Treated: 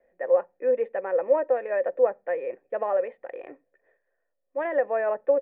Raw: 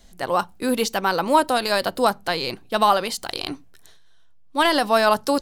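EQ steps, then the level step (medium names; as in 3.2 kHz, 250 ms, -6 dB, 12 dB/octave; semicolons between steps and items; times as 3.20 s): cascade formant filter e; distance through air 370 m; three-band isolator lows -20 dB, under 330 Hz, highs -13 dB, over 2.1 kHz; +8.5 dB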